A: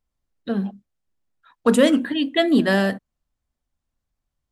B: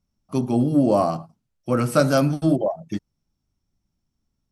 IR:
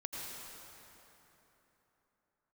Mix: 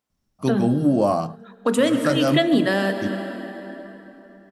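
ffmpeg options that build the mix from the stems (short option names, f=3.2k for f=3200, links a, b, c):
-filter_complex "[0:a]highpass=210,volume=2dB,asplit=3[a][b][c];[b]volume=-6.5dB[d];[1:a]adelay=100,volume=1dB[e];[c]apad=whole_len=203432[f];[e][f]sidechaincompress=threshold=-20dB:ratio=8:attack=16:release=229[g];[2:a]atrim=start_sample=2205[h];[d][h]afir=irnorm=-1:irlink=0[i];[a][g][i]amix=inputs=3:normalize=0,alimiter=limit=-8.5dB:level=0:latency=1:release=442"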